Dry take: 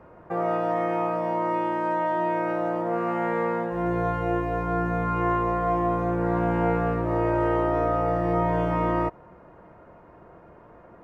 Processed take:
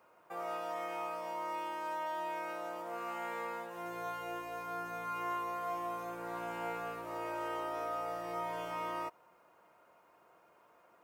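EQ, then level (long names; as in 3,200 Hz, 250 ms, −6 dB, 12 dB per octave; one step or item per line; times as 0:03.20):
first difference
parametric band 1,800 Hz −7.5 dB 0.36 octaves
+6.0 dB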